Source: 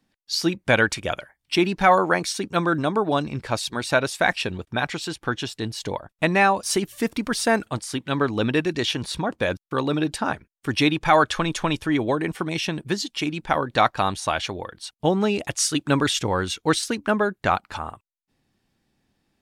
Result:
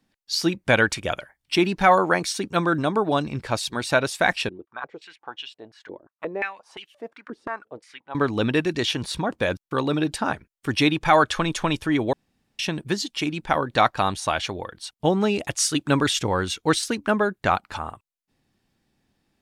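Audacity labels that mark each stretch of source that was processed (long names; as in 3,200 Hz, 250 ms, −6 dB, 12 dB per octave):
4.490000	8.150000	band-pass on a step sequencer 5.7 Hz 340–2,900 Hz
12.130000	12.590000	fill with room tone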